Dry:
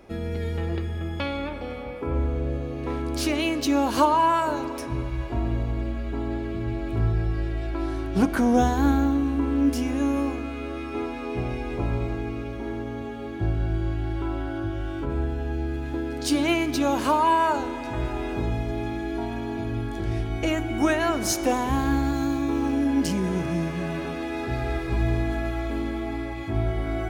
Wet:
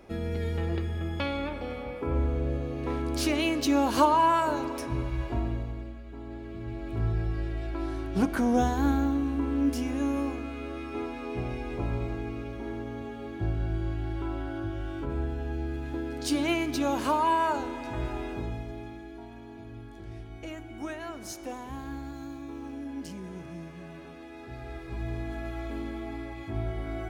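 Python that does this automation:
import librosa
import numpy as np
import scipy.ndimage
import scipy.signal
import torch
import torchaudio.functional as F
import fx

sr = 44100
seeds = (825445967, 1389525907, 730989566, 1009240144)

y = fx.gain(x, sr, db=fx.line((5.32, -2.0), (6.04, -14.0), (7.12, -4.5), (18.14, -4.5), (19.17, -15.0), (24.37, -15.0), (25.64, -7.0)))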